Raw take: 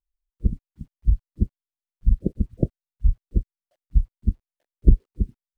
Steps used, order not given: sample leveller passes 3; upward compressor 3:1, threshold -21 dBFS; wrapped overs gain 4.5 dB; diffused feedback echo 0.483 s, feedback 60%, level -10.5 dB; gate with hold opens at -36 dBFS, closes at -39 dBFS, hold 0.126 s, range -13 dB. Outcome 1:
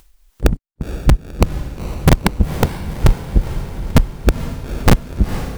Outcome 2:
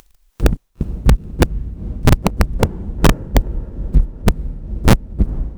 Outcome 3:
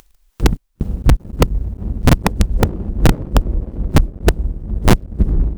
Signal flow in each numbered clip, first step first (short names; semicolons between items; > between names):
gate with hold > sample leveller > wrapped overs > diffused feedback echo > upward compressor; gate with hold > upward compressor > sample leveller > diffused feedback echo > wrapped overs; gate with hold > upward compressor > diffused feedback echo > sample leveller > wrapped overs